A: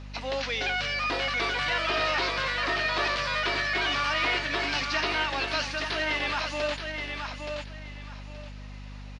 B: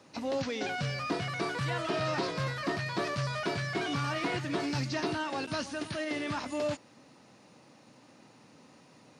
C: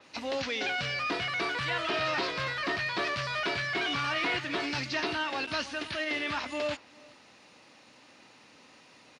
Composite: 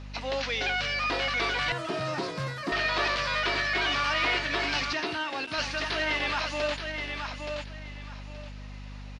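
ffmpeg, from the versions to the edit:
ffmpeg -i take0.wav -i take1.wav -i take2.wav -filter_complex "[0:a]asplit=3[link_01][link_02][link_03];[link_01]atrim=end=1.722[link_04];[1:a]atrim=start=1.718:end=2.722[link_05];[link_02]atrim=start=2.718:end=4.932[link_06];[2:a]atrim=start=4.928:end=5.582[link_07];[link_03]atrim=start=5.578[link_08];[link_04][link_05]acrossfade=duration=0.004:curve1=hsin:curve2=hsin[link_09];[link_09][link_06]acrossfade=duration=0.004:curve1=hsin:curve2=hsin[link_10];[link_10][link_07]acrossfade=duration=0.004:curve1=hsin:curve2=hsin[link_11];[link_11][link_08]acrossfade=duration=0.004:curve1=hsin:curve2=hsin" out.wav

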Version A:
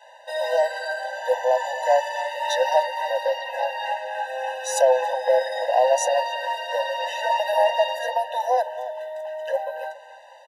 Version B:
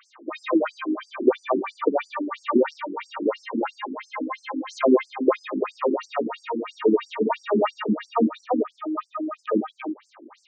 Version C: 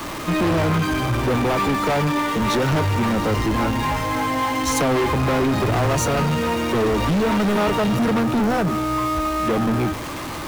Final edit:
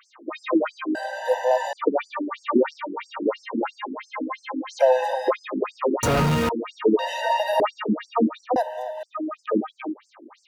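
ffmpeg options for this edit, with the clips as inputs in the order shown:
ffmpeg -i take0.wav -i take1.wav -i take2.wav -filter_complex "[0:a]asplit=4[link_01][link_02][link_03][link_04];[1:a]asplit=6[link_05][link_06][link_07][link_08][link_09][link_10];[link_05]atrim=end=0.952[link_11];[link_01]atrim=start=0.948:end=1.732[link_12];[link_06]atrim=start=1.728:end=4.83[link_13];[link_02]atrim=start=4.79:end=5.31[link_14];[link_07]atrim=start=5.27:end=6.032[link_15];[2:a]atrim=start=6.028:end=6.492[link_16];[link_08]atrim=start=6.488:end=6.992[link_17];[link_03]atrim=start=6.988:end=7.602[link_18];[link_09]atrim=start=7.598:end=8.562[link_19];[link_04]atrim=start=8.558:end=9.032[link_20];[link_10]atrim=start=9.028[link_21];[link_11][link_12]acrossfade=duration=0.004:curve1=hsin:curve2=hsin[link_22];[link_22][link_13]acrossfade=duration=0.004:curve1=hsin:curve2=hsin[link_23];[link_23][link_14]acrossfade=duration=0.04:curve1=tri:curve2=tri[link_24];[link_24][link_15]acrossfade=duration=0.04:curve1=tri:curve2=tri[link_25];[link_25][link_16]acrossfade=duration=0.004:curve1=hsin:curve2=hsin[link_26];[link_26][link_17]acrossfade=duration=0.004:curve1=hsin:curve2=hsin[link_27];[link_27][link_18]acrossfade=duration=0.004:curve1=hsin:curve2=hsin[link_28];[link_28][link_19]acrossfade=duration=0.004:curve1=hsin:curve2=hsin[link_29];[link_29][link_20]acrossfade=duration=0.004:curve1=hsin:curve2=hsin[link_30];[link_30][link_21]acrossfade=duration=0.004:curve1=hsin:curve2=hsin" out.wav

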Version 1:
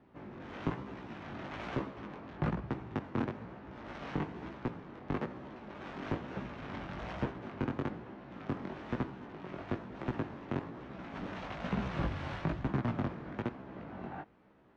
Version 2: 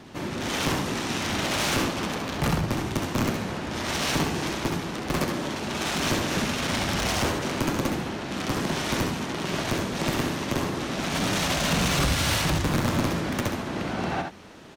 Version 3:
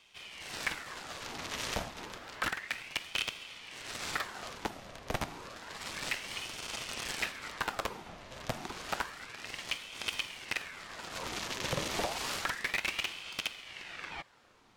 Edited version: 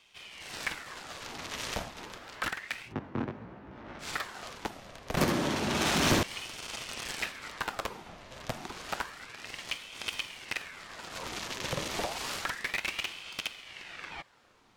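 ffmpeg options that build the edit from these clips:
ffmpeg -i take0.wav -i take1.wav -i take2.wav -filter_complex "[2:a]asplit=3[link_01][link_02][link_03];[link_01]atrim=end=2.94[link_04];[0:a]atrim=start=2.84:end=4.08[link_05];[link_02]atrim=start=3.98:end=5.172[link_06];[1:a]atrim=start=5.168:end=6.232[link_07];[link_03]atrim=start=6.228[link_08];[link_04][link_05]acrossfade=duration=0.1:curve1=tri:curve2=tri[link_09];[link_09][link_06]acrossfade=duration=0.1:curve1=tri:curve2=tri[link_10];[link_10][link_07]acrossfade=duration=0.004:curve1=hsin:curve2=hsin[link_11];[link_11][link_08]acrossfade=duration=0.004:curve1=hsin:curve2=hsin" out.wav

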